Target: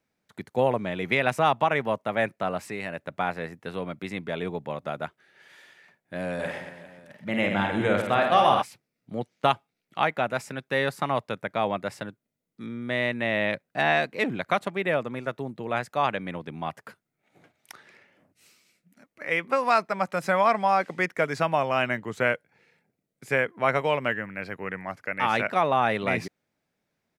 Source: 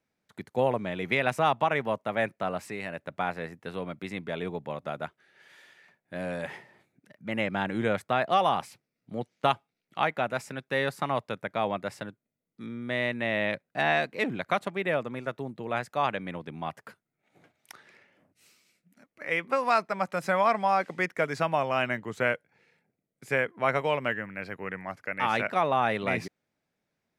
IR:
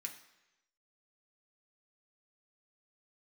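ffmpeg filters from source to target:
-filter_complex "[0:a]asplit=3[s0][s1][s2];[s0]afade=t=out:st=6.38:d=0.02[s3];[s1]aecho=1:1:50|125|237.5|406.2|659.4:0.631|0.398|0.251|0.158|0.1,afade=t=in:st=6.38:d=0.02,afade=t=out:st=8.61:d=0.02[s4];[s2]afade=t=in:st=8.61:d=0.02[s5];[s3][s4][s5]amix=inputs=3:normalize=0,volume=1.33"

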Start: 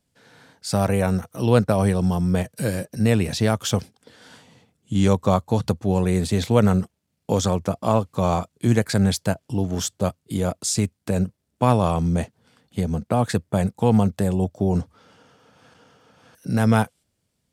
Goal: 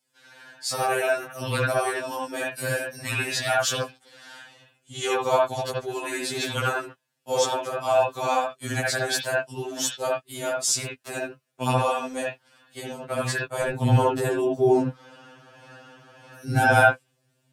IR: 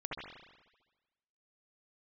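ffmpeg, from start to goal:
-filter_complex "[0:a]asetnsamples=n=441:p=0,asendcmd='13.63 highpass f 220',highpass=f=1200:p=1[s0];[1:a]atrim=start_sample=2205,afade=t=out:st=0.13:d=0.01,atrim=end_sample=6174[s1];[s0][s1]afir=irnorm=-1:irlink=0,afftfilt=real='re*2.45*eq(mod(b,6),0)':imag='im*2.45*eq(mod(b,6),0)':win_size=2048:overlap=0.75,volume=2.82"

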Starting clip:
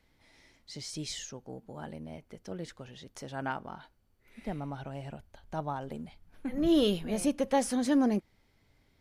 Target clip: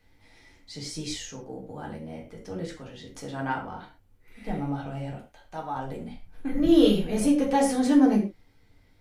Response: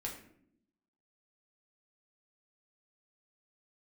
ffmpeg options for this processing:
-filter_complex "[0:a]asettb=1/sr,asplit=3[s0][s1][s2];[s0]atrim=end=5.144[s3];[s1]atrim=start=5.14:end=5.75,asetpts=PTS-STARTPTS,afade=t=in:d=0.004:c=qsin,afade=t=out:st=0.606:d=0.004:c=qsin,lowshelf=f=420:g=-11.5[s4];[s2]atrim=start=5.746[s5];[s3][s4]acrossfade=d=0.004:c1=hsin:c2=qsin[s6];[s6][s5]acrossfade=d=0.004:c1=qsin:c2=hsin[s7];[1:a]atrim=start_sample=2205,afade=t=out:st=0.18:d=0.01,atrim=end_sample=8379[s8];[s7][s8]afir=irnorm=-1:irlink=0,volume=1.78"

